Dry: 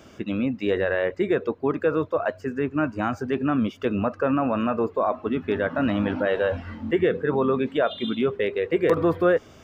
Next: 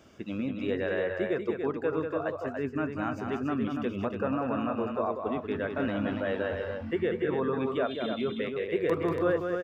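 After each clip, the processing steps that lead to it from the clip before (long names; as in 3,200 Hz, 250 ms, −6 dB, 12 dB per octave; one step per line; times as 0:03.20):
loudspeakers that aren't time-aligned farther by 65 metres −6 dB, 98 metres −6 dB
level −8 dB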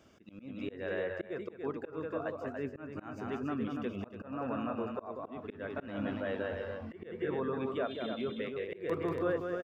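slap from a distant wall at 300 metres, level −16 dB
volume swells 199 ms
level −5.5 dB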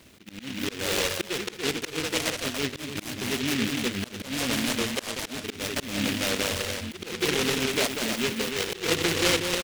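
short delay modulated by noise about 2,500 Hz, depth 0.33 ms
level +8.5 dB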